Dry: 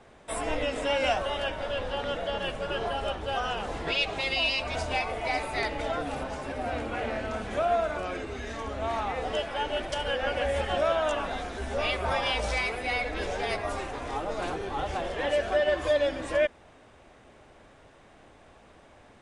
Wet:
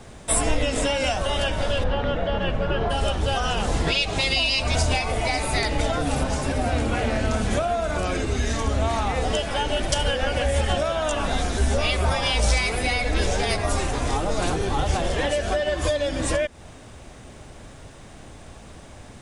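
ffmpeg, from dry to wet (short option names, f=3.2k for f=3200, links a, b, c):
-filter_complex "[0:a]asplit=3[a][b][c];[a]afade=t=out:st=1.83:d=0.02[d];[b]lowpass=2.3k,afade=t=in:st=1.83:d=0.02,afade=t=out:st=2.89:d=0.02[e];[c]afade=t=in:st=2.89:d=0.02[f];[d][e][f]amix=inputs=3:normalize=0,acompressor=threshold=-29dB:ratio=6,bass=f=250:g=10,treble=f=4k:g=12,volume=7dB"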